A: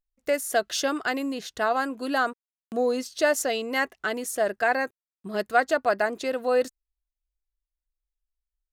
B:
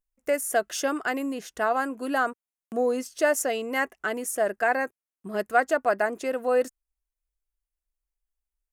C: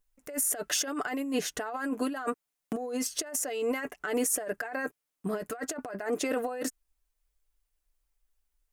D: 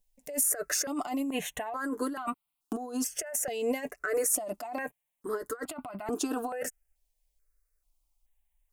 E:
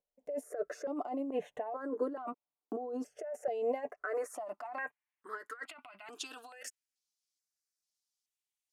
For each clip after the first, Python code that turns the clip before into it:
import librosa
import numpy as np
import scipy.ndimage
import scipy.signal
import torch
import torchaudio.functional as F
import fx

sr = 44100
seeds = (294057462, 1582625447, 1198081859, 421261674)

y1 = fx.graphic_eq_15(x, sr, hz=(100, 4000, 10000), db=(-10, -11, 3))
y2 = y1 + 0.51 * np.pad(y1, (int(6.8 * sr / 1000.0), 0))[:len(y1)]
y2 = fx.over_compress(y2, sr, threshold_db=-33.0, ratio=-1.0)
y3 = fx.phaser_held(y2, sr, hz=2.3, low_hz=350.0, high_hz=1700.0)
y3 = y3 * librosa.db_to_amplitude(2.5)
y4 = fx.filter_sweep_bandpass(y3, sr, from_hz=500.0, to_hz=5200.0, start_s=3.23, end_s=7.08, q=2.0)
y4 = y4 * librosa.db_to_amplitude(2.5)